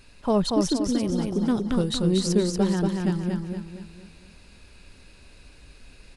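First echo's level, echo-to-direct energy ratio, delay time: −3.5 dB, −2.5 dB, 234 ms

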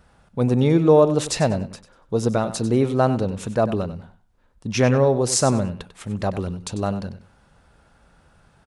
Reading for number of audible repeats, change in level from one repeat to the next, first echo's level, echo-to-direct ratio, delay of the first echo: 2, −13.0 dB, −13.0 dB, −13.0 dB, 96 ms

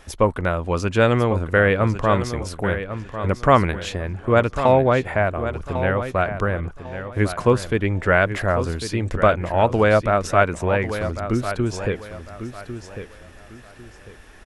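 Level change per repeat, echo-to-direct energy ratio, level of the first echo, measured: −11.5 dB, −10.0 dB, −10.5 dB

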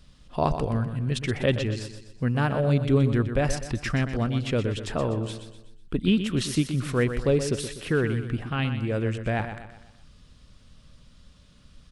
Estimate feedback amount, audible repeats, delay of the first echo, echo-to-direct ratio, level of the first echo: 44%, 4, 124 ms, −8.5 dB, −9.5 dB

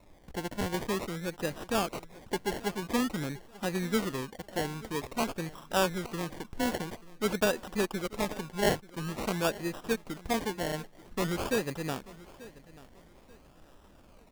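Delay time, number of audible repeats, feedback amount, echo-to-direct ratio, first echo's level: 886 ms, 2, 32%, −19.0 dB, −19.5 dB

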